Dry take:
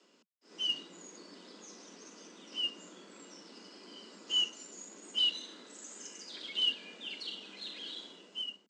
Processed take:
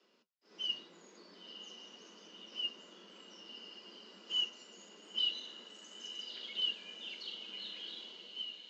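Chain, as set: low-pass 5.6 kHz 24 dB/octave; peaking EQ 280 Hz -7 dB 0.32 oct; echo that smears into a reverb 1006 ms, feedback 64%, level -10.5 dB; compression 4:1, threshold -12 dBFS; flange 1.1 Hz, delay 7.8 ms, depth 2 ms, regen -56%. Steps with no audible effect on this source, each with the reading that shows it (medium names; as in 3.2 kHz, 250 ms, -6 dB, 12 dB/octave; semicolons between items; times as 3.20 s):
compression, threshold -12 dBFS: peak at its input -20.5 dBFS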